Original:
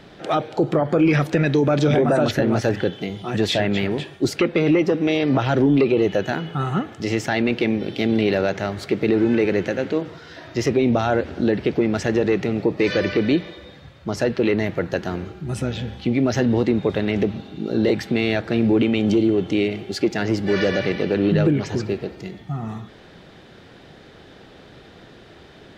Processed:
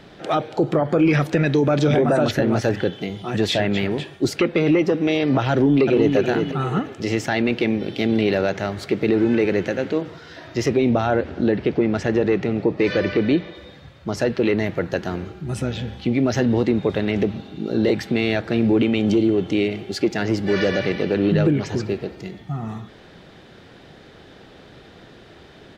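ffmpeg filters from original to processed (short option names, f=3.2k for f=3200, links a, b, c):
-filter_complex "[0:a]asplit=2[a][b];[b]afade=t=in:st=5.51:d=0.01,afade=t=out:st=6.15:d=0.01,aecho=0:1:360|720|1080|1440:0.562341|0.196819|0.0688868|0.0241104[c];[a][c]amix=inputs=2:normalize=0,asettb=1/sr,asplit=3[d][e][f];[d]atrim=end=10.934[g];[e]atrim=start=10.93:end=13.55,asetpts=PTS-STARTPTS,afade=t=in:d=0.004:c=qsin,afade=t=out:st=2.616:d=0.004:c=qsin,aemphasis=mode=reproduction:type=cd[h];[f]atrim=start=13.546[i];[g][h]acrossfade=d=0.004:c1=hsin:c2=qsin[j];[j][i]acrossfade=d=0.004:c1=qsin:c2=hsin"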